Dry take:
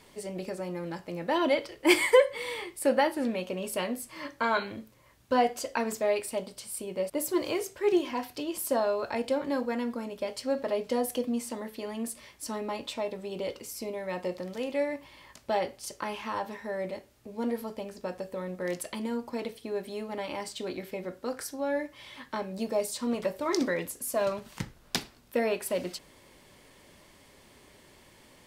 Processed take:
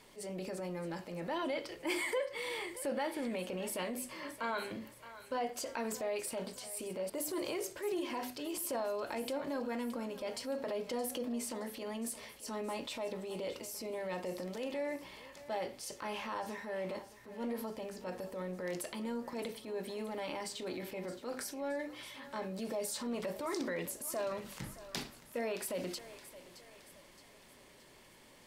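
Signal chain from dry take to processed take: bell 76 Hz -6 dB 0.8 oct; notches 50/100/150/200/250/300/350 Hz; transient shaper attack -7 dB, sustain +4 dB; compressor 3:1, threshold -32 dBFS, peak gain reduction 11 dB; thinning echo 0.62 s, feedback 51%, high-pass 470 Hz, level -14 dB; gain -3 dB

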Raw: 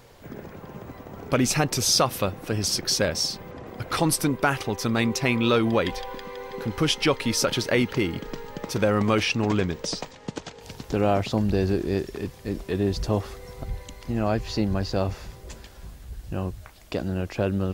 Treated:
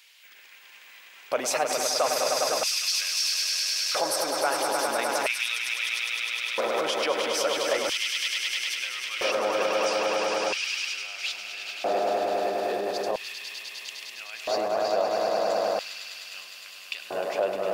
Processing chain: on a send: swelling echo 0.102 s, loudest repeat 5, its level -7 dB; on the sum: limiter -17 dBFS, peak gain reduction 10.5 dB; LFO high-pass square 0.38 Hz 630–2600 Hz

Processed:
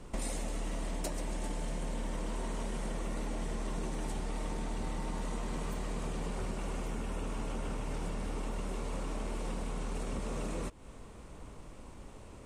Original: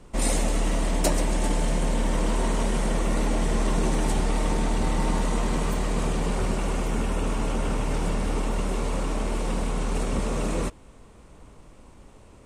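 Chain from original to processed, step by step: compressor, threshold -34 dBFS, peak gain reduction 16 dB

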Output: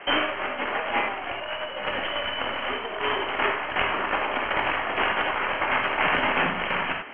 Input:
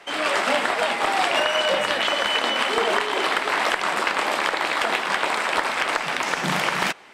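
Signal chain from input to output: tracing distortion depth 0.13 ms; Chebyshev low-pass 3200 Hz, order 10; negative-ratio compressor -28 dBFS, ratio -0.5; non-linear reverb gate 0.12 s flat, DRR 1 dB

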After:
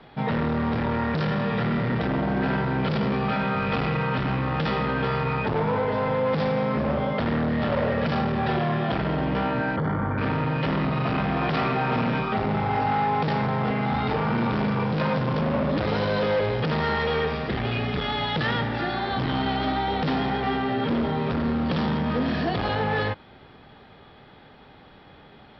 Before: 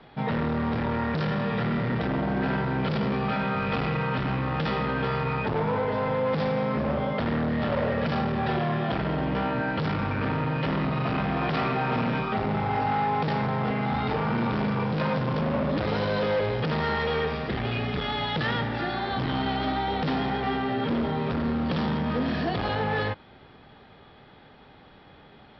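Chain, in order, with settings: 9.76–10.18 polynomial smoothing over 41 samples; gain +2 dB

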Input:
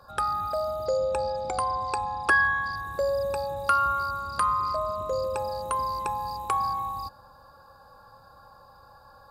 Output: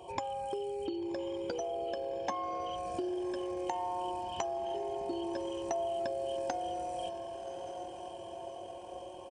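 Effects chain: comb 6.9 ms, depth 44%; compressor 8:1, threshold -39 dBFS, peak gain reduction 19 dB; Bessel high-pass 180 Hz, order 2; diffused feedback echo 1.146 s, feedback 55%, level -8.5 dB; pitch shift -7.5 st; gain +4.5 dB

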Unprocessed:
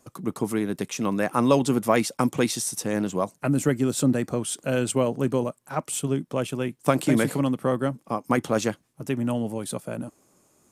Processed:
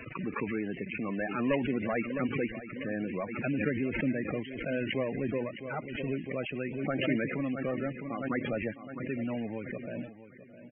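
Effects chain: CVSD 16 kbps; dynamic EQ 130 Hz, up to -4 dB, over -40 dBFS, Q 1.3; in parallel at -12 dB: companded quantiser 2-bit; on the sum: resonant high shelf 1500 Hz +7 dB, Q 1.5; on a send: feedback echo 0.66 s, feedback 37%, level -14 dB; on the sum: loudest bins only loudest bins 32; backwards sustainer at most 48 dB/s; gain -8.5 dB

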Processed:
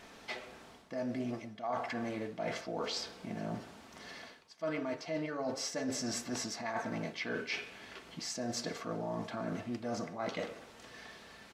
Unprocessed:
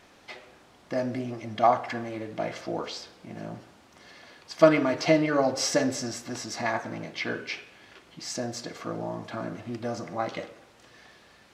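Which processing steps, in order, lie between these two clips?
comb 4.5 ms, depth 31%; reverse; compressor 16:1, threshold -35 dBFS, peak gain reduction 25.5 dB; reverse; gain +1.5 dB

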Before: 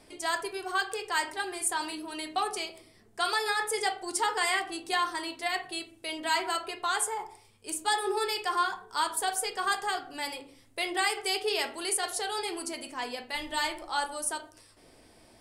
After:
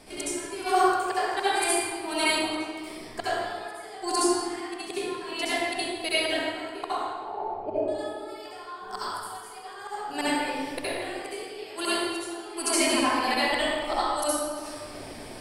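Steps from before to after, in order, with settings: flipped gate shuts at -24 dBFS, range -30 dB; 6.95–7.88 synth low-pass 650 Hz, resonance Q 7.7; reverb RT60 1.9 s, pre-delay 61 ms, DRR -11.5 dB; gain +5.5 dB

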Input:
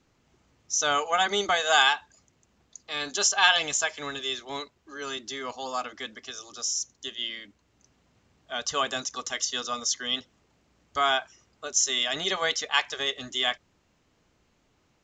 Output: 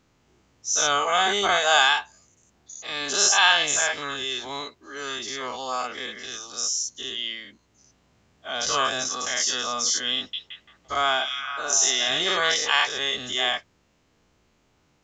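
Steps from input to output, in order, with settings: spectral dilation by 0.12 s; 10.16–12.22 delay with a stepping band-pass 0.171 s, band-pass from 3400 Hz, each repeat -0.7 oct, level -2.5 dB; gain -2 dB

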